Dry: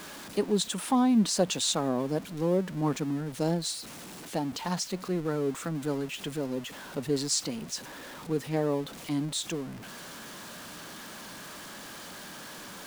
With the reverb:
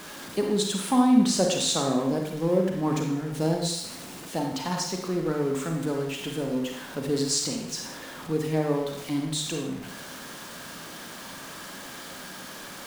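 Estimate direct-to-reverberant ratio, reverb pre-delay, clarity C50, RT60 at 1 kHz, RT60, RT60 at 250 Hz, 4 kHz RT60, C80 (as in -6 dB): 1.5 dB, 27 ms, 3.0 dB, 0.75 s, 0.80 s, 0.80 s, 0.70 s, 6.5 dB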